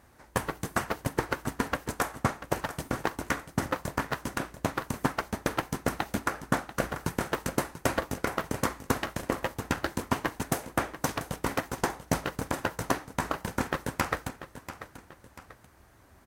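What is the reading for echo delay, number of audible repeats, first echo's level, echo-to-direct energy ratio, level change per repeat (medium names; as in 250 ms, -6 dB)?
689 ms, 2, -13.0 dB, -12.5 dB, -7.5 dB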